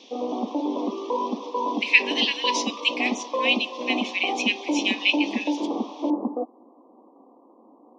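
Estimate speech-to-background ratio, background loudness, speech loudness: 5.0 dB, -28.5 LUFS, -23.5 LUFS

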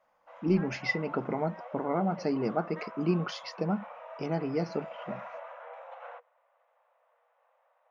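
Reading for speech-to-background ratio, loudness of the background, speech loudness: 13.5 dB, -45.5 LUFS, -32.0 LUFS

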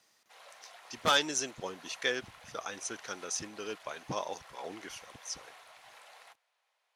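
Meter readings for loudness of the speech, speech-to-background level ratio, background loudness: -35.5 LUFS, 18.0 dB, -53.5 LUFS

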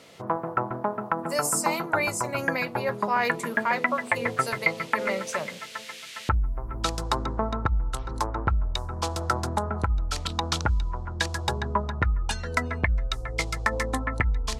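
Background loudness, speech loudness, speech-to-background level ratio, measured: -28.5 LUFS, -29.5 LUFS, -1.0 dB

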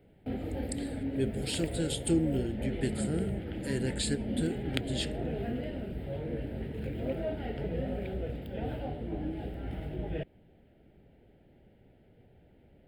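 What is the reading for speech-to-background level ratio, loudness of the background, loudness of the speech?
2.0 dB, -36.5 LUFS, -34.5 LUFS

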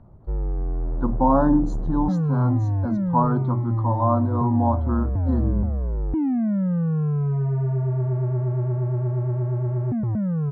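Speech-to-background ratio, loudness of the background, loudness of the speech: 0.5 dB, -25.0 LUFS, -24.5 LUFS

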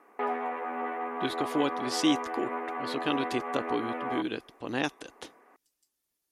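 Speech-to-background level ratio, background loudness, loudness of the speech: 2.0 dB, -34.5 LUFS, -32.5 LUFS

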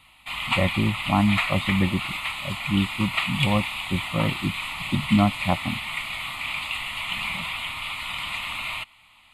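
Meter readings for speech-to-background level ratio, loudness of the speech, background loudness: 2.5 dB, -25.5 LUFS, -28.0 LUFS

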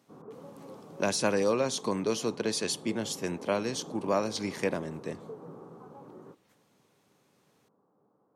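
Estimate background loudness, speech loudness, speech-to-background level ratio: -47.5 LUFS, -31.0 LUFS, 16.5 dB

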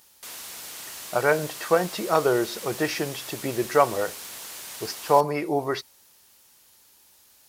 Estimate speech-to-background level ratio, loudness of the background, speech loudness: 11.5 dB, -36.5 LUFS, -25.0 LUFS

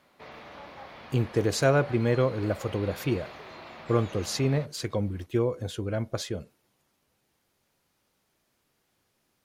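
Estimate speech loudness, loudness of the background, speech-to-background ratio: -28.5 LUFS, -44.5 LUFS, 16.0 dB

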